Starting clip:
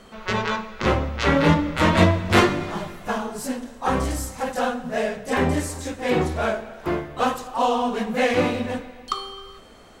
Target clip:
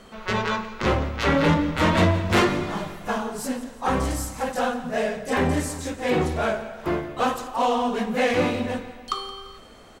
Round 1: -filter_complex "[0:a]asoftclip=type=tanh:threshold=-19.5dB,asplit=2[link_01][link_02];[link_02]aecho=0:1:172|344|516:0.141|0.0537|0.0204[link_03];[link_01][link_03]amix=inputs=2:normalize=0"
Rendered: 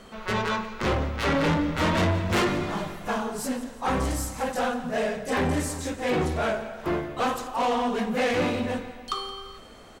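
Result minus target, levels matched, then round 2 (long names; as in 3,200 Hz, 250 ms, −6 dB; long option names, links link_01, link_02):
soft clipping: distortion +7 dB
-filter_complex "[0:a]asoftclip=type=tanh:threshold=-11.5dB,asplit=2[link_01][link_02];[link_02]aecho=0:1:172|344|516:0.141|0.0537|0.0204[link_03];[link_01][link_03]amix=inputs=2:normalize=0"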